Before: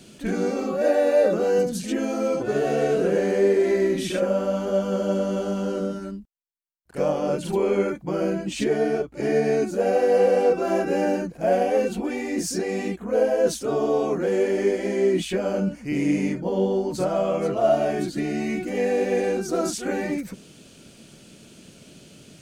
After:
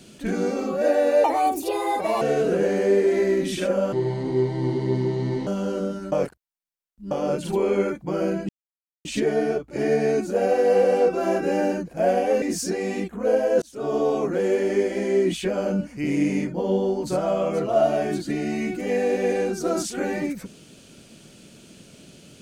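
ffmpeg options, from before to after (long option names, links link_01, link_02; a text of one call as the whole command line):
ffmpeg -i in.wav -filter_complex "[0:a]asplit=10[link_01][link_02][link_03][link_04][link_05][link_06][link_07][link_08][link_09][link_10];[link_01]atrim=end=1.244[link_11];[link_02]atrim=start=1.24:end=2.74,asetpts=PTS-STARTPTS,asetrate=67914,aresample=44100[link_12];[link_03]atrim=start=2.736:end=4.454[link_13];[link_04]atrim=start=4.45:end=5.47,asetpts=PTS-STARTPTS,asetrate=29106,aresample=44100[link_14];[link_05]atrim=start=5.466:end=6.122[link_15];[link_06]atrim=start=6.118:end=7.112,asetpts=PTS-STARTPTS,areverse[link_16];[link_07]atrim=start=7.108:end=8.49,asetpts=PTS-STARTPTS,afade=type=out:start_time=1.378:duration=0.004:curve=hsin,apad=pad_dur=0.56[link_17];[link_08]atrim=start=8.49:end=11.862,asetpts=PTS-STARTPTS,afade=type=in:duration=0.004:curve=hsin[link_18];[link_09]atrim=start=12.298:end=13.5,asetpts=PTS-STARTPTS,afade=type=out:start_time=1.198:duration=0.004:curve=hsin[link_19];[link_10]atrim=start=13.5,asetpts=PTS-STARTPTS,afade=type=in:duration=0.34[link_20];[link_11][link_12]acrossfade=duration=0.004:curve1=hsin:curve2=hsin[link_21];[link_21][link_13]acrossfade=duration=0.004:curve1=hsin:curve2=hsin[link_22];[link_22][link_14]acrossfade=duration=0.004:curve1=hsin:curve2=hsin[link_23];[link_23][link_15]acrossfade=duration=0.004:curve1=hsin:curve2=hsin[link_24];[link_24][link_16]acrossfade=duration=0.004:curve1=hsin:curve2=hsin[link_25];[link_17][link_18]concat=n=2:v=0:a=1[link_26];[link_25][link_26]acrossfade=duration=0.004:curve1=hsin:curve2=hsin[link_27];[link_19][link_20]concat=n=2:v=0:a=1[link_28];[link_27][link_28]acrossfade=duration=0.004:curve1=hsin:curve2=hsin" out.wav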